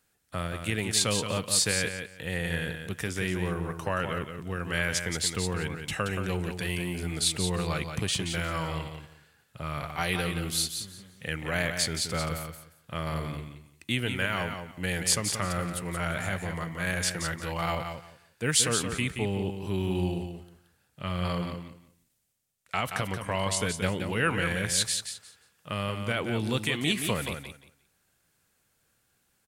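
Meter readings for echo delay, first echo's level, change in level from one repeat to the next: 176 ms, -7.0 dB, -14.0 dB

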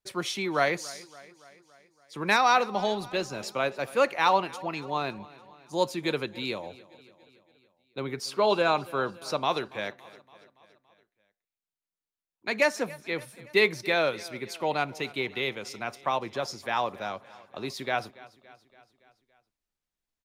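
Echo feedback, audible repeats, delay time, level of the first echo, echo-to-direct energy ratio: 59%, 4, 283 ms, -20.5 dB, -18.5 dB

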